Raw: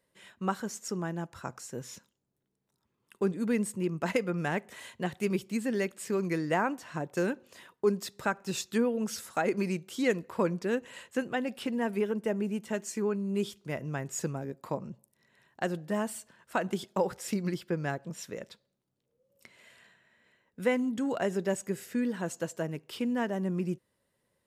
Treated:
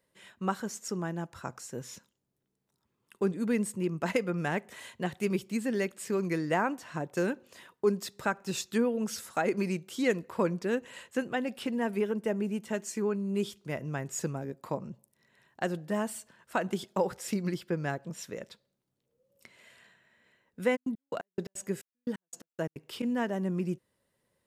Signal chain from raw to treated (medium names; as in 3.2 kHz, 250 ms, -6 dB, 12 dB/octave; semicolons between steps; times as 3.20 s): 20.75–23.02 s: trance gate "x...x..x..x.xx" 174 bpm -60 dB